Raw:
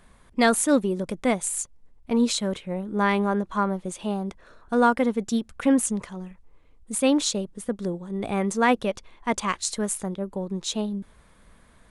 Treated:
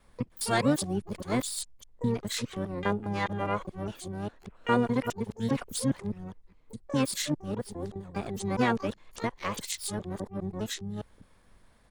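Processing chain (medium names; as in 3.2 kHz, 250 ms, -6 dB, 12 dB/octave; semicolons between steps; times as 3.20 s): time reversed locally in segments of 204 ms; harmony voices -12 st -4 dB, -3 st -16 dB, +12 st -10 dB; trim -8 dB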